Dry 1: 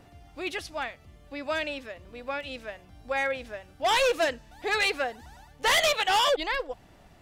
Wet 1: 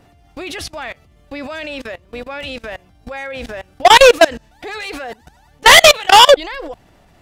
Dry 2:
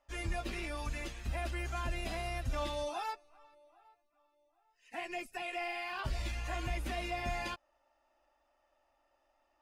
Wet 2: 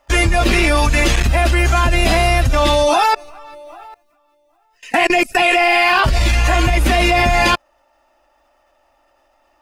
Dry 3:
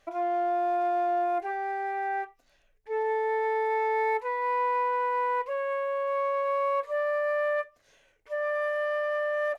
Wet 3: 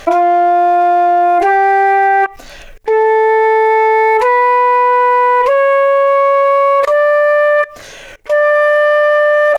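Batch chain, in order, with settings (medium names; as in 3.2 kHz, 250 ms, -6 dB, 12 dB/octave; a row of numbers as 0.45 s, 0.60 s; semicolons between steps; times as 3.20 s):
level held to a coarse grid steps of 23 dB; peak normalisation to -1.5 dBFS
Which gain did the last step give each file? +18.5 dB, +33.0 dB, +36.0 dB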